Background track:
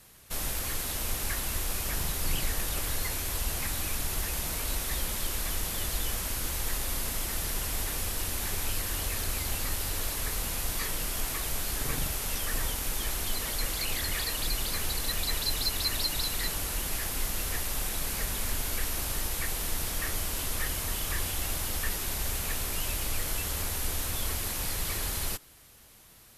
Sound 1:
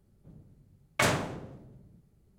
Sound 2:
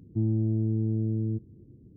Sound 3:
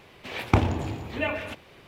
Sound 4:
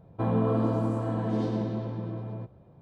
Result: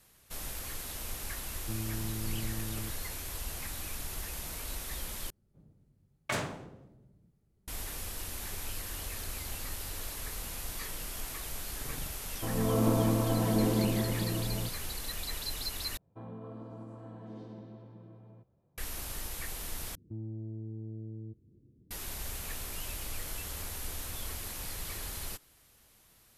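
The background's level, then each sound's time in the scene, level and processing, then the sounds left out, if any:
background track -7.5 dB
1.52 s: add 2 -12 dB
5.30 s: replace with 1 -7.5 dB
12.23 s: add 4 -10.5 dB + level rider
15.97 s: replace with 4 -17.5 dB + peak limiter -19 dBFS
19.95 s: replace with 2 -10 dB + dynamic bell 190 Hz, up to -7 dB, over -40 dBFS, Q 0.73
not used: 3

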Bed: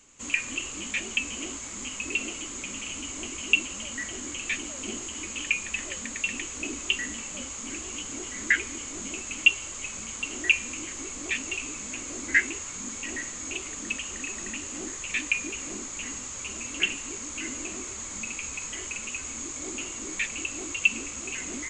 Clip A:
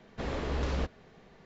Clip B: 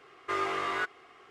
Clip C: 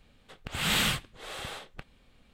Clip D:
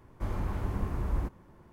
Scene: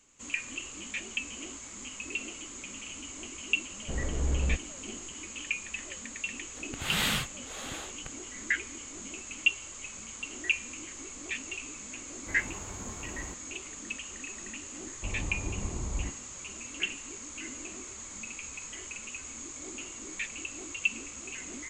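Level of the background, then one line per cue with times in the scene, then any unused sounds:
bed -6.5 dB
3.70 s: add A -7.5 dB + tilt EQ -3 dB/octave
6.27 s: add C -2.5 dB
12.06 s: add D -4.5 dB + bass shelf 180 Hz -11 dB
14.82 s: add D -3.5 dB + Savitzky-Golay filter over 65 samples
not used: B

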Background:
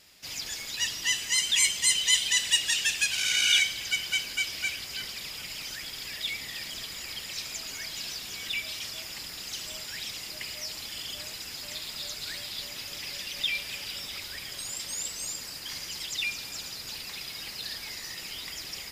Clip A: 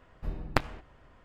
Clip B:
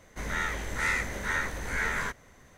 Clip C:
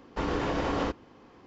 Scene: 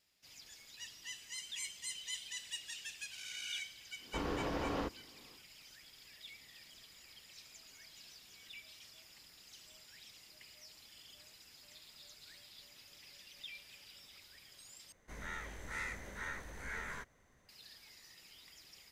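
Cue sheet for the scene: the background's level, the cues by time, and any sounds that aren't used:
background -20 dB
3.97 s: add C -8.5 dB, fades 0.10 s
14.92 s: replace with B -13.5 dB
not used: A

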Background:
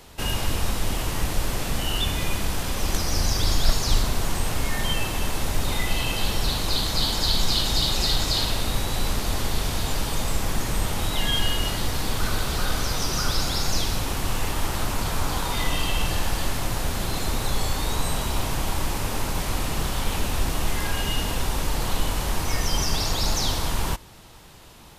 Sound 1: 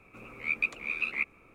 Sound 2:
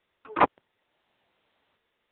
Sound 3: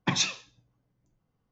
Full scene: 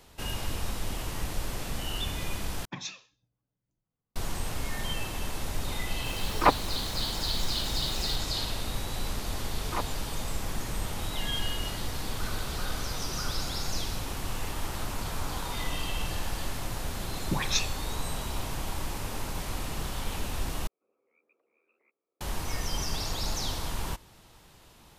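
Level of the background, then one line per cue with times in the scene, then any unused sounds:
background -8 dB
2.65 s: replace with 3 -12.5 dB
6.05 s: add 2 -0.5 dB + added noise pink -43 dBFS
9.36 s: add 2 -7 dB + peak limiter -13.5 dBFS
17.23 s: add 3 -2 dB + phase dispersion highs, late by 129 ms, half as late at 1.1 kHz
20.67 s: replace with 1 -15.5 dB + ladder band-pass 530 Hz, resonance 40%

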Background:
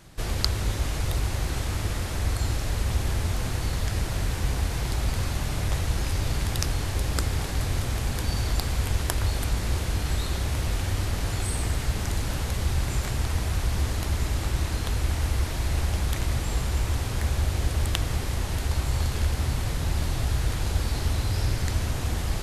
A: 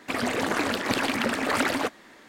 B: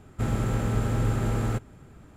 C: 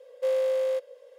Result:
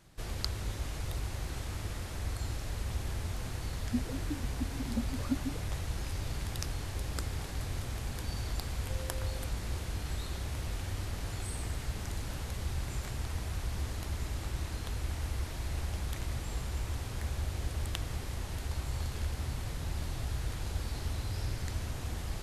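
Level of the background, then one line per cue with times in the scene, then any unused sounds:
background -10 dB
3.71 s: add A -12 dB + spectral contrast expander 4:1
8.67 s: add C -17.5 dB + compression 1.5:1, threshold -40 dBFS
not used: B

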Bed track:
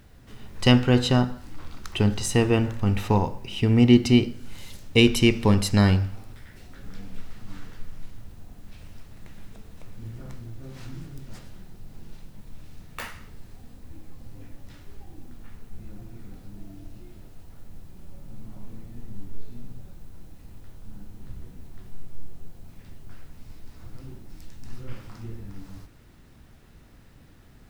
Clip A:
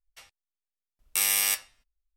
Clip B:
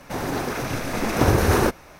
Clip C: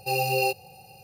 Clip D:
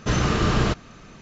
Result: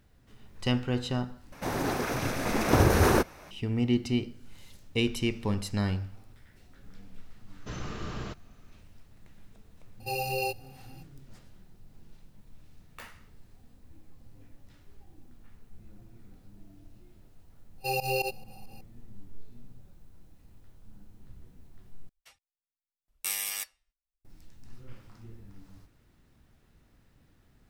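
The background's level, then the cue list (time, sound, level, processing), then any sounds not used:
bed track -10.5 dB
1.52 s: replace with B -3.5 dB
7.60 s: add D -17 dB
10.00 s: add C -6.5 dB
17.78 s: add C -4 dB + volume shaper 137 bpm, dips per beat 2, -20 dB, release 93 ms
22.09 s: replace with A -6.5 dB + reverb removal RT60 1 s

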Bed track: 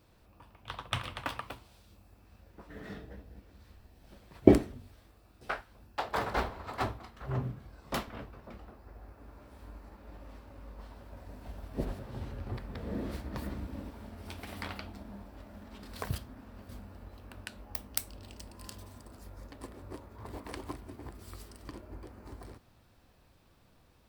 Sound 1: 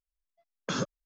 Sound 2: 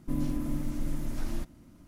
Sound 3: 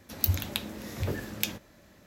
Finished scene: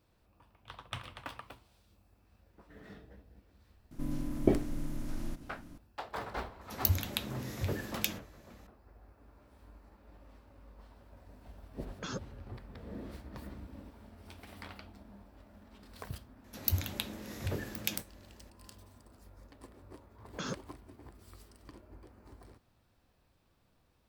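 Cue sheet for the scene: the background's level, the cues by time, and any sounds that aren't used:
bed track -7.5 dB
3.91 s: add 2 -7.5 dB + spectral levelling over time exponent 0.6
6.61 s: add 3 -3 dB
11.34 s: add 1 -7.5 dB + expander on every frequency bin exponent 1.5
16.44 s: add 3 -4.5 dB
19.70 s: add 1 -7.5 dB

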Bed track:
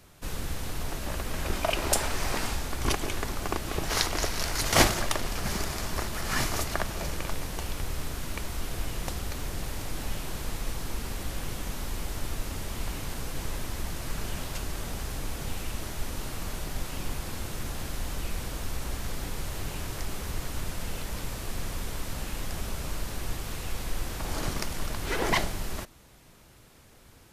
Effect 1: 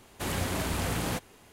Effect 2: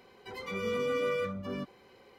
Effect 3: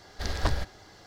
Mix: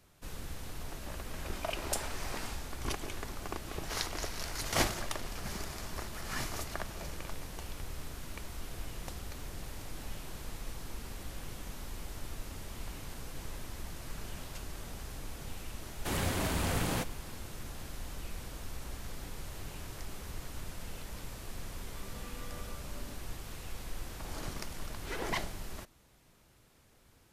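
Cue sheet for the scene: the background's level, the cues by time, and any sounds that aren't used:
bed track -9 dB
15.85 s: add 1 -2 dB
21.49 s: add 2 -17.5 dB + comb 3.2 ms, depth 85%
not used: 3

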